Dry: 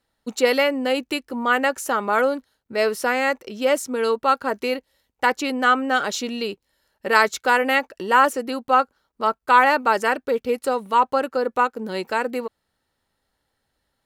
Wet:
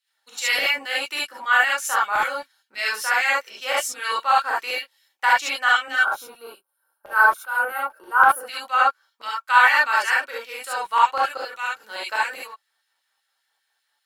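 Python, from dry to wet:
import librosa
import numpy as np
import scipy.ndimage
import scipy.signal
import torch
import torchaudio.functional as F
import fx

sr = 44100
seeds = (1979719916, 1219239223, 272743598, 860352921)

y = fx.spec_box(x, sr, start_s=5.96, length_s=2.45, low_hz=1600.0, high_hz=8800.0, gain_db=-21)
y = fx.filter_lfo_highpass(y, sr, shape='saw_down', hz=5.1, low_hz=870.0, high_hz=3000.0, q=1.2)
y = fx.rev_gated(y, sr, seeds[0], gate_ms=90, shape='rising', drr_db=-6.5)
y = y * 10.0 ** (-4.0 / 20.0)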